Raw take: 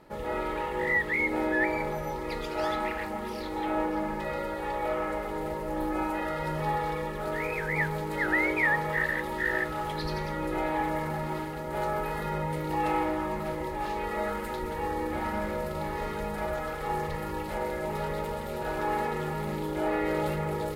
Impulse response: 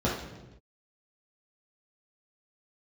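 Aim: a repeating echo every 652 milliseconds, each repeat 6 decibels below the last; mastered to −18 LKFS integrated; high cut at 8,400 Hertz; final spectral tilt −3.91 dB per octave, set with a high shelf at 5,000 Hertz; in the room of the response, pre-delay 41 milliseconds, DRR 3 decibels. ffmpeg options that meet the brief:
-filter_complex "[0:a]lowpass=8400,highshelf=frequency=5000:gain=-6.5,aecho=1:1:652|1304|1956|2608|3260|3912:0.501|0.251|0.125|0.0626|0.0313|0.0157,asplit=2[link_01][link_02];[1:a]atrim=start_sample=2205,adelay=41[link_03];[link_02][link_03]afir=irnorm=-1:irlink=0,volume=-14.5dB[link_04];[link_01][link_04]amix=inputs=2:normalize=0,volume=8.5dB"

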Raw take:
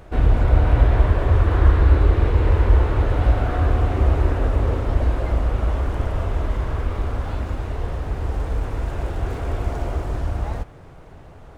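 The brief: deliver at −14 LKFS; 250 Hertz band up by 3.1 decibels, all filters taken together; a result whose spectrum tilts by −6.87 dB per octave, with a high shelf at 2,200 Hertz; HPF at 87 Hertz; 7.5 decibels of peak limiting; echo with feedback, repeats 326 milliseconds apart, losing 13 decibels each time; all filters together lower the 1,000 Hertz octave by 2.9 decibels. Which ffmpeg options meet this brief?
ffmpeg -i in.wav -af "highpass=87,equalizer=frequency=250:width_type=o:gain=4.5,equalizer=frequency=1000:width_type=o:gain=-3.5,highshelf=frequency=2200:gain=-4,alimiter=limit=-15dB:level=0:latency=1,aecho=1:1:326|652|978:0.224|0.0493|0.0108,volume=12.5dB" out.wav

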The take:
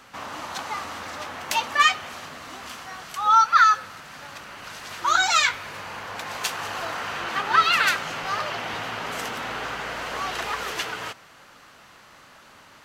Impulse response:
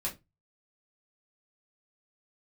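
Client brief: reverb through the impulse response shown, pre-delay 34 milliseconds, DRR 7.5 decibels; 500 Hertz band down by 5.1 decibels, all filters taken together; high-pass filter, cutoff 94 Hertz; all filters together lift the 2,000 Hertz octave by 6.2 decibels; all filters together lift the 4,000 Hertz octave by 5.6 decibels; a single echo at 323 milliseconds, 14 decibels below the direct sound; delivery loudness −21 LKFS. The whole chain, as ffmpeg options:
-filter_complex "[0:a]highpass=94,equalizer=frequency=500:width_type=o:gain=-7.5,equalizer=frequency=2000:width_type=o:gain=7.5,equalizer=frequency=4000:width_type=o:gain=4.5,aecho=1:1:323:0.2,asplit=2[link_01][link_02];[1:a]atrim=start_sample=2205,adelay=34[link_03];[link_02][link_03]afir=irnorm=-1:irlink=0,volume=-10.5dB[link_04];[link_01][link_04]amix=inputs=2:normalize=0,volume=-2.5dB"

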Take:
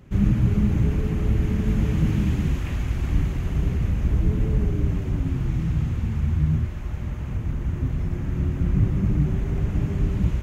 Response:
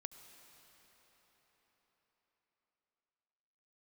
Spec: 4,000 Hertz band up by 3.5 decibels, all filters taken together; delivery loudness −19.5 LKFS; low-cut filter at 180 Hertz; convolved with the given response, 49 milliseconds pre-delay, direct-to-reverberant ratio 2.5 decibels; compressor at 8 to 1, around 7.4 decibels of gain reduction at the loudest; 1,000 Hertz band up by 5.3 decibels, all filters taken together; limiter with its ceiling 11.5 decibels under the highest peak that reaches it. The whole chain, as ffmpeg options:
-filter_complex "[0:a]highpass=180,equalizer=frequency=1000:width_type=o:gain=6.5,equalizer=frequency=4000:width_type=o:gain=4.5,acompressor=threshold=-28dB:ratio=8,alimiter=level_in=8dB:limit=-24dB:level=0:latency=1,volume=-8dB,asplit=2[link_01][link_02];[1:a]atrim=start_sample=2205,adelay=49[link_03];[link_02][link_03]afir=irnorm=-1:irlink=0,volume=2dB[link_04];[link_01][link_04]amix=inputs=2:normalize=0,volume=18.5dB"

